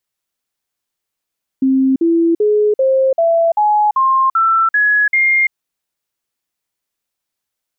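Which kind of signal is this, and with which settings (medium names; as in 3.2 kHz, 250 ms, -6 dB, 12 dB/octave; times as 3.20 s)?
stepped sine 265 Hz up, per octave 3, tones 10, 0.34 s, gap 0.05 s -9.5 dBFS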